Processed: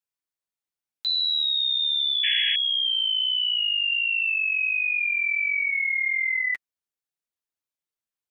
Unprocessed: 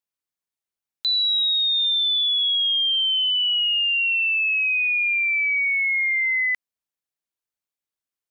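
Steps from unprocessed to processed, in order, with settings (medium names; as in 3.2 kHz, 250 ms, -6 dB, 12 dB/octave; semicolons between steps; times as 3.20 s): flange 1.4 Hz, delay 5.5 ms, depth 6.8 ms, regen -9%; painted sound noise, 2.23–2.56 s, 1.6–3.3 kHz -27 dBFS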